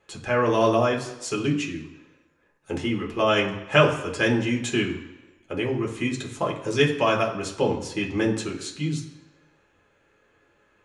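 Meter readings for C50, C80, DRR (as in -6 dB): 9.0 dB, 12.0 dB, -2.0 dB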